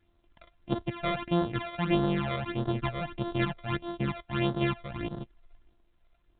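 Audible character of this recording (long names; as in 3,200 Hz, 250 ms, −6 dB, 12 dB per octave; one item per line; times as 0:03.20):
a buzz of ramps at a fixed pitch in blocks of 128 samples
phaser sweep stages 12, 1.6 Hz, lowest notch 270–2,400 Hz
mu-law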